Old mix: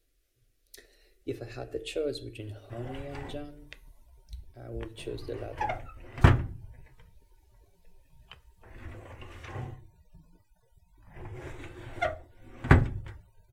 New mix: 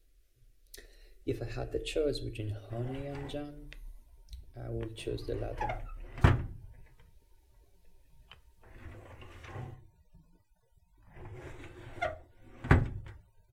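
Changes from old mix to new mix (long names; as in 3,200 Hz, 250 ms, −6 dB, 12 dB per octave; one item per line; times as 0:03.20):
speech: add low-shelf EQ 89 Hz +10 dB
background −4.5 dB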